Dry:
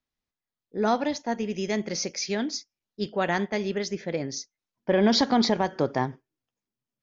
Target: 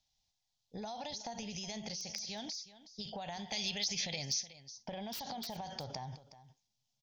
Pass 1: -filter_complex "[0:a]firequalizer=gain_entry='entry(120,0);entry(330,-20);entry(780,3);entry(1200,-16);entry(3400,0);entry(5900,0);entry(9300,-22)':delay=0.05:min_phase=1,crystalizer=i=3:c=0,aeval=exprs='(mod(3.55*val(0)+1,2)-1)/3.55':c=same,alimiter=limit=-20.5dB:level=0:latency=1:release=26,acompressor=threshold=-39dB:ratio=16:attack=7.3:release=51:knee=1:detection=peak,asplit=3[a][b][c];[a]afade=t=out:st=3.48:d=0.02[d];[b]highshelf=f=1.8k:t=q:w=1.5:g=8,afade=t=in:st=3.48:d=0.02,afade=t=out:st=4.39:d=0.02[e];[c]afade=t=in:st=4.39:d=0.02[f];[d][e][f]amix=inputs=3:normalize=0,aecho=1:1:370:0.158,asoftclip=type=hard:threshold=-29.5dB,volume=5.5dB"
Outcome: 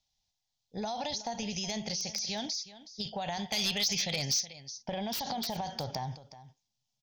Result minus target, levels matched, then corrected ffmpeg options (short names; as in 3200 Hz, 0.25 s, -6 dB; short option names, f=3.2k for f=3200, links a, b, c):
compressor: peak gain reduction -7.5 dB
-filter_complex "[0:a]firequalizer=gain_entry='entry(120,0);entry(330,-20);entry(780,3);entry(1200,-16);entry(3400,0);entry(5900,0);entry(9300,-22)':delay=0.05:min_phase=1,crystalizer=i=3:c=0,aeval=exprs='(mod(3.55*val(0)+1,2)-1)/3.55':c=same,alimiter=limit=-20.5dB:level=0:latency=1:release=26,acompressor=threshold=-47dB:ratio=16:attack=7.3:release=51:knee=1:detection=peak,asplit=3[a][b][c];[a]afade=t=out:st=3.48:d=0.02[d];[b]highshelf=f=1.8k:t=q:w=1.5:g=8,afade=t=in:st=3.48:d=0.02,afade=t=out:st=4.39:d=0.02[e];[c]afade=t=in:st=4.39:d=0.02[f];[d][e][f]amix=inputs=3:normalize=0,aecho=1:1:370:0.158,asoftclip=type=hard:threshold=-29.5dB,volume=5.5dB"